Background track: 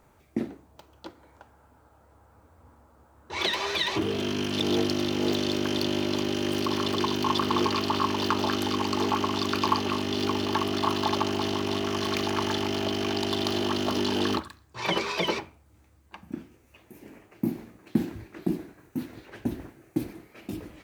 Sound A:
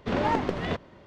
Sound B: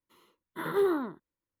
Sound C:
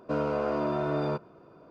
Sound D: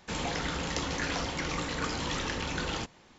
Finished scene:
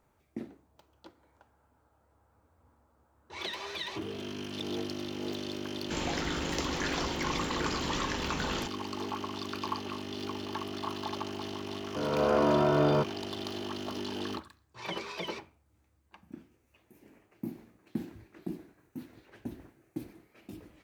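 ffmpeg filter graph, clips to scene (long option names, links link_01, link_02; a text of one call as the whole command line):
ffmpeg -i bed.wav -i cue0.wav -i cue1.wav -i cue2.wav -i cue3.wav -filter_complex "[0:a]volume=-10.5dB[link_01];[3:a]dynaudnorm=framelen=120:gausssize=5:maxgain=11.5dB[link_02];[4:a]atrim=end=3.18,asetpts=PTS-STARTPTS,volume=-1.5dB,afade=type=in:duration=0.004:curve=hsin,afade=type=out:start_time=3.176:duration=0.004:curve=hsin,adelay=5820[link_03];[link_02]atrim=end=1.7,asetpts=PTS-STARTPTS,volume=-7.5dB,afade=type=in:duration=0.004:curve=hsin,afade=type=out:start_time=1.696:duration=0.004:curve=hsin,adelay=523026S[link_04];[link_01][link_03][link_04]amix=inputs=3:normalize=0" out.wav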